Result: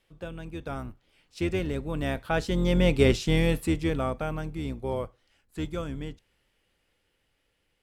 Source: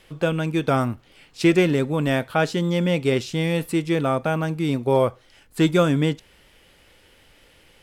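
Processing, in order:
sub-octave generator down 2 octaves, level −2 dB
source passing by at 0:03.13, 8 m/s, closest 3.4 metres

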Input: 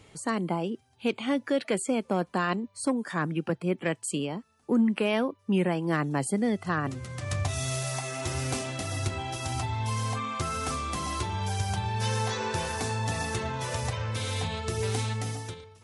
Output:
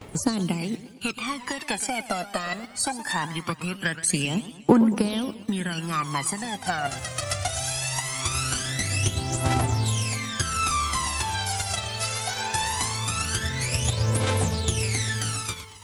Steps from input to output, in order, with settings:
spectral envelope flattened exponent 0.6
downward compressor, threshold −31 dBFS, peak gain reduction 11 dB
noise gate −56 dBFS, range −17 dB
harmonic and percussive parts rebalanced harmonic −6 dB
phase shifter 0.21 Hz, delay 1.6 ms, feedback 78%
feedback echo with a swinging delay time 117 ms, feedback 53%, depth 202 cents, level −14.5 dB
level +7.5 dB

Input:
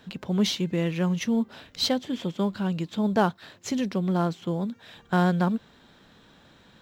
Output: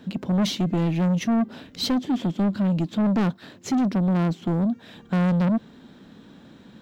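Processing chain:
parametric band 240 Hz +13 dB 1.7 octaves
soft clipping −18.5 dBFS, distortion −8 dB

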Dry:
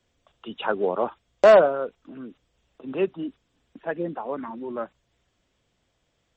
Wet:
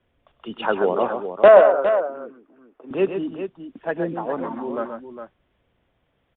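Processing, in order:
running median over 9 samples
0:01.48–0:02.91: three-way crossover with the lows and the highs turned down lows −18 dB, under 340 Hz, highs −16 dB, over 2,000 Hz
on a send: multi-tap delay 101/131/409 ms −17.5/−7.5/−9.5 dB
on the sum: downsampling to 8,000 Hz
level +3.5 dB

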